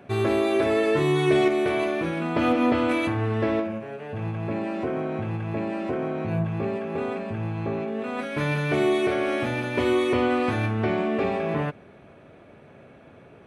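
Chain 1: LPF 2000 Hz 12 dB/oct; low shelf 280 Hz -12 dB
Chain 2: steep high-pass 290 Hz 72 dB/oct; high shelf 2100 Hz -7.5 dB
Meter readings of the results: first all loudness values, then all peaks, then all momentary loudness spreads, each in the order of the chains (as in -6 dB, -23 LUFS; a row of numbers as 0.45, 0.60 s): -29.5, -27.0 LUFS; -13.0, -10.0 dBFS; 10, 11 LU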